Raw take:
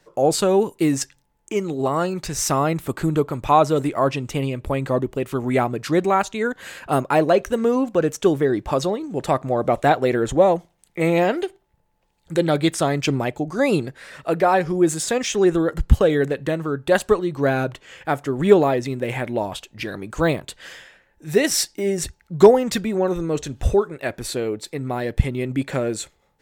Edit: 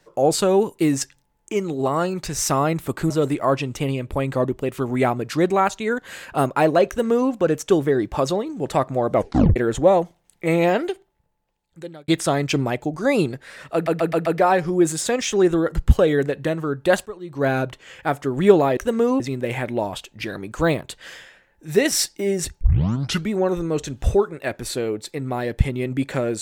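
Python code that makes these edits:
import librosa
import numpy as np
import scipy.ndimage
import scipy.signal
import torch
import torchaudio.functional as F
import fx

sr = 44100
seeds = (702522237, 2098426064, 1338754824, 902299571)

y = fx.edit(x, sr, fx.cut(start_s=3.1, length_s=0.54),
    fx.duplicate(start_s=7.42, length_s=0.43, to_s=18.79),
    fx.tape_stop(start_s=9.69, length_s=0.41),
    fx.fade_out_span(start_s=11.32, length_s=1.3),
    fx.stutter(start_s=14.28, slice_s=0.13, count=5),
    fx.fade_in_from(start_s=17.08, length_s=0.42, curve='qua', floor_db=-17.5),
    fx.tape_start(start_s=22.2, length_s=0.69), tone=tone)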